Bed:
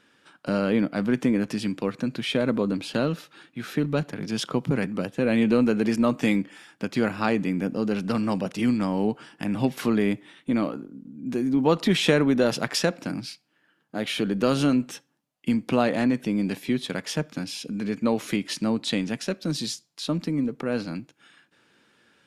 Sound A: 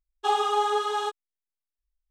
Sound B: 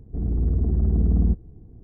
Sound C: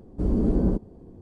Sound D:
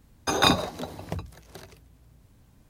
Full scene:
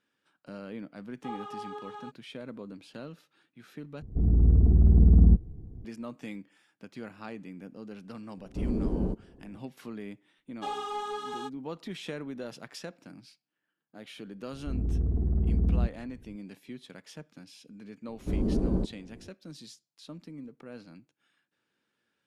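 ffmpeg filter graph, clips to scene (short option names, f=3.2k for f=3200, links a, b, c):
-filter_complex "[1:a]asplit=2[a][b];[2:a]asplit=2[c][d];[3:a]asplit=2[e][f];[0:a]volume=-18dB[g];[a]acrossover=split=3000[h][i];[i]acompressor=threshold=-52dB:ratio=4:attack=1:release=60[j];[h][j]amix=inputs=2:normalize=0[k];[c]bass=f=250:g=4,treble=f=4k:g=-1[l];[b]asoftclip=type=tanh:threshold=-18.5dB[m];[g]asplit=2[n][o];[n]atrim=end=4.024[p];[l]atrim=end=1.83,asetpts=PTS-STARTPTS,volume=-2dB[q];[o]atrim=start=5.846[r];[k]atrim=end=2.1,asetpts=PTS-STARTPTS,volume=-16dB,afade=t=in:d=0.004:c=hsin,afade=t=out:st=2.096:d=0.004:c=hsin,adelay=1000[s];[e]atrim=end=1.21,asetpts=PTS-STARTPTS,volume=-7dB,afade=t=in:d=0.004:c=hsin,afade=t=out:st=1.206:d=0.004:c=hsin,adelay=8370[t];[m]atrim=end=2.1,asetpts=PTS-STARTPTS,volume=-9dB,afade=t=in:d=0.004:c=hsin,afade=t=out:st=2.096:d=0.004:c=hsin,adelay=10380[u];[d]atrim=end=1.83,asetpts=PTS-STARTPTS,volume=-6dB,afade=t=in:d=0.004:c=hsin,afade=t=out:st=1.826:d=0.004:c=hsin,adelay=14530[v];[f]atrim=end=1.21,asetpts=PTS-STARTPTS,volume=-5dB,afade=t=in:d=0.004:c=hsin,afade=t=out:st=1.206:d=0.004:c=hsin,adelay=18080[w];[p][q]acrossfade=d=0.004:c1=hsin:c2=hsin[x];[x][r]acrossfade=d=0.004:c1=hsin:c2=hsin[y];[y][s][t][u][v][w]amix=inputs=6:normalize=0"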